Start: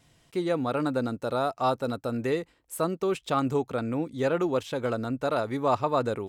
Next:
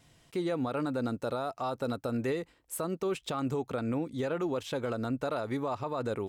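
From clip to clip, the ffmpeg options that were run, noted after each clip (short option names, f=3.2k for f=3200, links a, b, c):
-af "alimiter=limit=-24dB:level=0:latency=1:release=108"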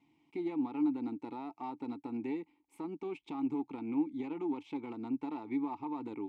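-filter_complex "[0:a]aeval=exprs='0.0668*(cos(1*acos(clip(val(0)/0.0668,-1,1)))-cos(1*PI/2))+0.015*(cos(2*acos(clip(val(0)/0.0668,-1,1)))-cos(2*PI/2))+0.00335*(cos(4*acos(clip(val(0)/0.0668,-1,1)))-cos(4*PI/2))':c=same,asplit=3[a][b][c];[a]bandpass=f=300:t=q:w=8,volume=0dB[d];[b]bandpass=f=870:t=q:w=8,volume=-6dB[e];[c]bandpass=f=2.24k:t=q:w=8,volume=-9dB[f];[d][e][f]amix=inputs=3:normalize=0,volume=5.5dB"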